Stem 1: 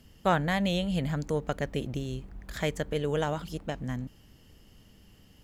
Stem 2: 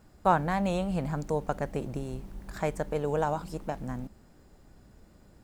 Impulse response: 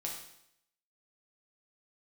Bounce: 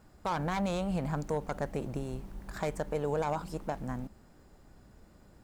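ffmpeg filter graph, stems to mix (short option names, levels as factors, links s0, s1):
-filter_complex "[0:a]equalizer=f=780:t=o:w=0.39:g=14.5,acrusher=bits=2:mix=0:aa=0.5,volume=0.224[s0];[1:a]volume=-1,volume=0.841[s1];[s0][s1]amix=inputs=2:normalize=0,equalizer=f=1100:t=o:w=1.6:g=2.5,alimiter=limit=0.0794:level=0:latency=1:release=65"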